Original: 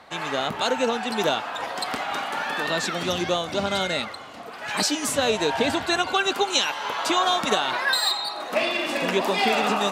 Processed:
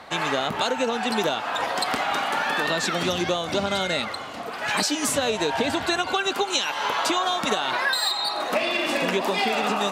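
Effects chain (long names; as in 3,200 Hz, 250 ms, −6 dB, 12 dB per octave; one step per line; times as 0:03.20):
downward compressor, threshold −26 dBFS, peak gain reduction 9.5 dB
level +5.5 dB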